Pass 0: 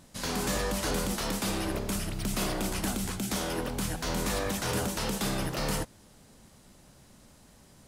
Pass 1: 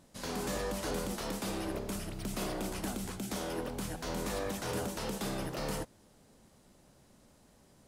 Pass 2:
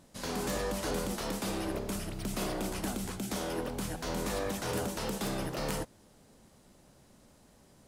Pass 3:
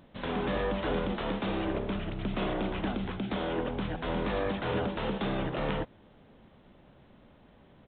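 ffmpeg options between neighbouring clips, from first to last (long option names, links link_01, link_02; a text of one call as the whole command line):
ffmpeg -i in.wav -af "equalizer=frequency=460:width_type=o:width=2.2:gain=5,volume=-8dB" out.wav
ffmpeg -i in.wav -af "aeval=exprs='(mod(15.8*val(0)+1,2)-1)/15.8':channel_layout=same,volume=2dB" out.wav
ffmpeg -i in.wav -af "aresample=8000,aresample=44100,volume=3.5dB" out.wav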